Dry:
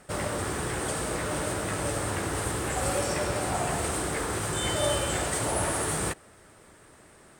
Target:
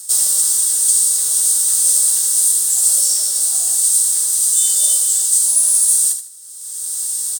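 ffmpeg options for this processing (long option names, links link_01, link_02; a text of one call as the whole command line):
ffmpeg -i in.wav -filter_complex "[0:a]highpass=frequency=810:poles=1,highshelf=frequency=7300:gain=9,asplit=2[link_01][link_02];[link_02]aecho=0:1:77|154|231:0.335|0.0938|0.0263[link_03];[link_01][link_03]amix=inputs=2:normalize=0,aexciter=amount=15.6:drive=8.3:freq=3700,dynaudnorm=framelen=200:gausssize=5:maxgain=6dB,volume=-1dB" out.wav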